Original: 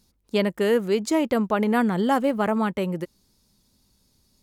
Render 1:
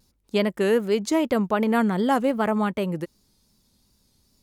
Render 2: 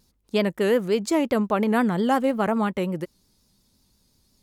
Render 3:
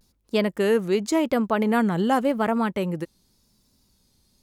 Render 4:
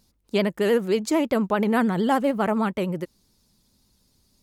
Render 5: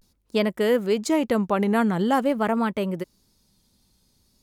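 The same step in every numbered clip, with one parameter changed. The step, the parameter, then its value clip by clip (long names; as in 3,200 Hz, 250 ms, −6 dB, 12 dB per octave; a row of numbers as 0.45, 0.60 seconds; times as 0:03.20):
pitch vibrato, speed: 2.6, 5.6, 0.89, 13, 0.46 Hertz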